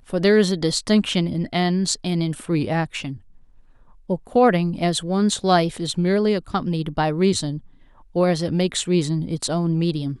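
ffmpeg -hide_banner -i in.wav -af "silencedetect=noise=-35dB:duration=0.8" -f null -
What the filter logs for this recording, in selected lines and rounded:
silence_start: 3.17
silence_end: 4.09 | silence_duration: 0.92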